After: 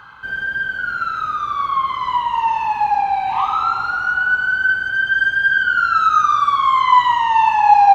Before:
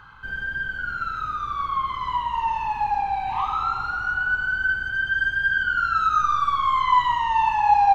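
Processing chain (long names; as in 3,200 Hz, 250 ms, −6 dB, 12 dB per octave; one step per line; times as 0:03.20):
high-pass filter 240 Hz 6 dB per octave
parametric band 620 Hz +3.5 dB 0.34 octaves
level +6.5 dB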